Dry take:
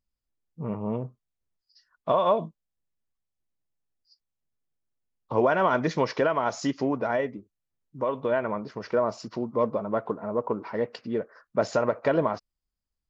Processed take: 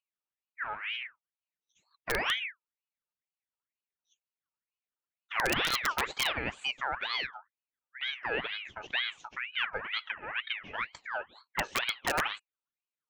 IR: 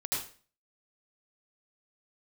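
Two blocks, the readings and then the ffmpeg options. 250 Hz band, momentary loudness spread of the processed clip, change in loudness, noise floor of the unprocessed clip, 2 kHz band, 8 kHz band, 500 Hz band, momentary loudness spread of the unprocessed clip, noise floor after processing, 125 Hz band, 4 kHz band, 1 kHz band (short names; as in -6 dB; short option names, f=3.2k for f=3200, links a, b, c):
-16.5 dB, 10 LU, -5.5 dB, -85 dBFS, +4.5 dB, n/a, -16.5 dB, 11 LU, under -85 dBFS, -13.5 dB, +11.0 dB, -7.0 dB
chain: -af "highpass=f=110:w=0.5412,highpass=f=110:w=1.3066,equalizer=f=160:t=q:w=4:g=10,equalizer=f=840:t=q:w=4:g=-7,equalizer=f=1.6k:t=q:w=4:g=10,equalizer=f=2.6k:t=q:w=4:g=-8,lowpass=f=4.7k:w=0.5412,lowpass=f=4.7k:w=1.3066,aeval=exprs='(mod(4.22*val(0)+1,2)-1)/4.22':c=same,aeval=exprs='val(0)*sin(2*PI*1900*n/s+1900*0.45/2.1*sin(2*PI*2.1*n/s))':c=same,volume=-5dB"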